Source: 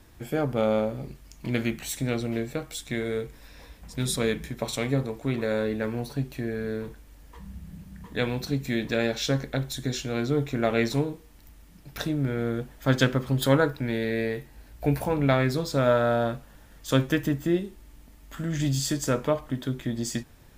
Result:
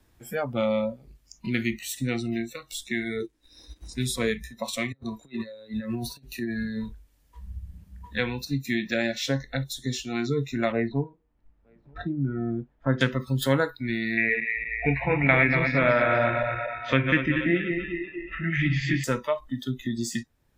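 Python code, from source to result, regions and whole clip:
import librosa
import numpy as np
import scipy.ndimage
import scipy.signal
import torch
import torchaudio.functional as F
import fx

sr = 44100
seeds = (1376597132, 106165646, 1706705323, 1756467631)

y = fx.chain(x, sr, fx.delta_mod(bps=64000, step_db=-46.5),
    fx.peak_eq(hz=320.0, db=14.5, octaves=0.48),
    fx.transient(attack_db=4, sustain_db=-10), at=(3.2, 3.93))
y = fx.chain(y, sr, fx.over_compress(threshold_db=-31.0, ratio=-0.5),
    fx.band_widen(depth_pct=40), at=(4.92, 8.15))
y = fx.chain(y, sr, fx.lowpass(hz=1300.0, slope=12),
    fx.echo_single(ms=925, db=-23.5), at=(10.72, 13.01))
y = fx.chain(y, sr, fx.reverse_delay_fb(ms=119, feedback_pct=76, wet_db=-6.0),
    fx.lowpass_res(hz=2300.0, q=4.4), at=(14.17, 19.04))
y = fx.noise_reduce_blind(y, sr, reduce_db=21)
y = fx.dynamic_eq(y, sr, hz=2000.0, q=3.1, threshold_db=-46.0, ratio=4.0, max_db=5)
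y = fx.band_squash(y, sr, depth_pct=40)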